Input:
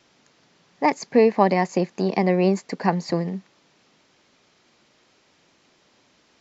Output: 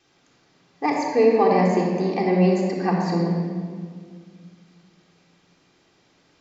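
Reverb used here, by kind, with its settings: shoebox room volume 3100 m³, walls mixed, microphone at 3.7 m; gain -6 dB

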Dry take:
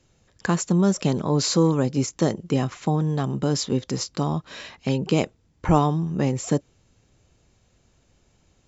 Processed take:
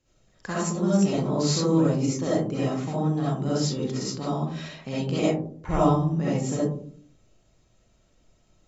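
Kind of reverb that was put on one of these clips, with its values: digital reverb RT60 0.52 s, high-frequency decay 0.3×, pre-delay 25 ms, DRR -9 dB; gain -11.5 dB

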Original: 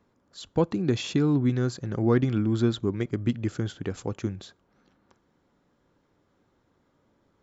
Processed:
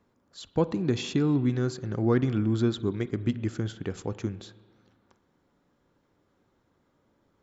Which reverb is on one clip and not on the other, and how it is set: spring tank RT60 1.5 s, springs 37/45 ms, chirp 25 ms, DRR 15.5 dB; gain -1.5 dB

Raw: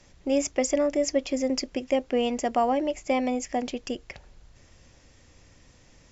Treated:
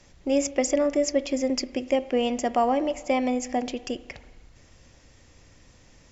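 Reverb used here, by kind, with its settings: spring tank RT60 1.4 s, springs 32/55 ms, chirp 55 ms, DRR 15 dB; gain +1 dB

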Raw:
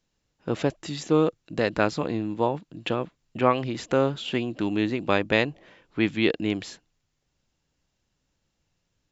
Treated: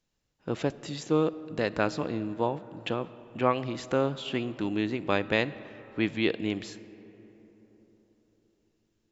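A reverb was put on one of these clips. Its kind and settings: digital reverb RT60 4.2 s, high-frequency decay 0.4×, pre-delay 5 ms, DRR 16 dB; gain -4 dB

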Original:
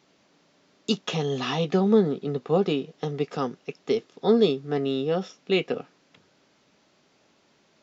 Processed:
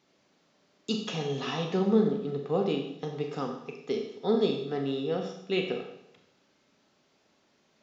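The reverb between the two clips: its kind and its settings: Schroeder reverb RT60 0.78 s, combs from 29 ms, DRR 3 dB; gain -6.5 dB

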